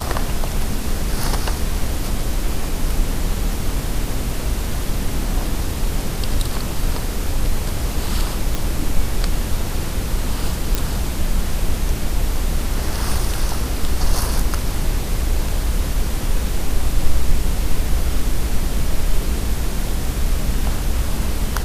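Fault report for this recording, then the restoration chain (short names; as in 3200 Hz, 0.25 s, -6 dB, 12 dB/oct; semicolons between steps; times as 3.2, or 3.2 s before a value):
8.55 pop
10.75 pop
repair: de-click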